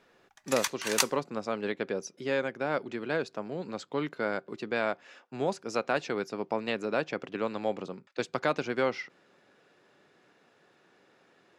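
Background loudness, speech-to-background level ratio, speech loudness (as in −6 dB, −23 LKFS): −31.0 LKFS, −2.0 dB, −33.0 LKFS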